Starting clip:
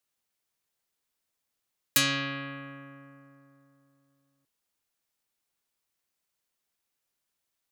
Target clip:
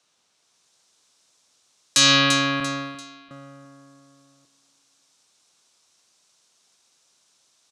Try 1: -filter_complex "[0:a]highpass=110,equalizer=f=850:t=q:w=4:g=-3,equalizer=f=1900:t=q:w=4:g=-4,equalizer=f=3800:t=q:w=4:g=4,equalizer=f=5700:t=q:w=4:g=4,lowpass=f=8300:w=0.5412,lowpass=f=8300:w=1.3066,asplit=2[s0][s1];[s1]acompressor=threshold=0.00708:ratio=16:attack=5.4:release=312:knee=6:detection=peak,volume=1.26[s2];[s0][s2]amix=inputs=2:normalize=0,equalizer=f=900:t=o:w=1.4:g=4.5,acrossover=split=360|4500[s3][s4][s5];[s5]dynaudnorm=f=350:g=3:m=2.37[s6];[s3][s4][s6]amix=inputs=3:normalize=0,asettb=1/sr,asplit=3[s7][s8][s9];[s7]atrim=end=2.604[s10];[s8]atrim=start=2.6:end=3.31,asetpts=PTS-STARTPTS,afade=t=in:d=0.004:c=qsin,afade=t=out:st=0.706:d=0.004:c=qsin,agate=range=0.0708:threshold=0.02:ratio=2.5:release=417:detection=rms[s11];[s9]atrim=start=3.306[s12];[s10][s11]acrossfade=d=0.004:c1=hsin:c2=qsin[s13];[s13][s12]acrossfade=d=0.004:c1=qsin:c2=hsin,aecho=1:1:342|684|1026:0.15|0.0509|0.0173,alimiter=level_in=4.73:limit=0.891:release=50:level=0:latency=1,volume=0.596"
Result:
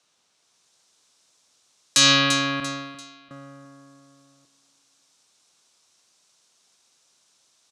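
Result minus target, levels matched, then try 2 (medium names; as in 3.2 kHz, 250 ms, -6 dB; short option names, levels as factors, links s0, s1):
compression: peak gain reduction +7 dB
-filter_complex "[0:a]highpass=110,equalizer=f=850:t=q:w=4:g=-3,equalizer=f=1900:t=q:w=4:g=-4,equalizer=f=3800:t=q:w=4:g=4,equalizer=f=5700:t=q:w=4:g=4,lowpass=f=8300:w=0.5412,lowpass=f=8300:w=1.3066,asplit=2[s0][s1];[s1]acompressor=threshold=0.0168:ratio=16:attack=5.4:release=312:knee=6:detection=peak,volume=1.26[s2];[s0][s2]amix=inputs=2:normalize=0,equalizer=f=900:t=o:w=1.4:g=4.5,acrossover=split=360|4500[s3][s4][s5];[s5]dynaudnorm=f=350:g=3:m=2.37[s6];[s3][s4][s6]amix=inputs=3:normalize=0,asettb=1/sr,asplit=3[s7][s8][s9];[s7]atrim=end=2.604[s10];[s8]atrim=start=2.6:end=3.31,asetpts=PTS-STARTPTS,afade=t=in:d=0.004:c=qsin,afade=t=out:st=0.706:d=0.004:c=qsin,agate=range=0.0708:threshold=0.02:ratio=2.5:release=417:detection=rms[s11];[s9]atrim=start=3.306[s12];[s10][s11]acrossfade=d=0.004:c1=hsin:c2=qsin[s13];[s13][s12]acrossfade=d=0.004:c1=qsin:c2=hsin,aecho=1:1:342|684|1026:0.15|0.0509|0.0173,alimiter=level_in=4.73:limit=0.891:release=50:level=0:latency=1,volume=0.596"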